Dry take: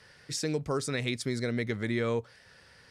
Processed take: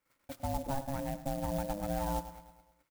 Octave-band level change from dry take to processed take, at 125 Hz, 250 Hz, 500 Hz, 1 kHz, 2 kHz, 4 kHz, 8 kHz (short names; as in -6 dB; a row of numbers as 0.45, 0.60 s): -5.0, -6.0, -6.0, +5.5, -14.5, -13.5, -8.5 dB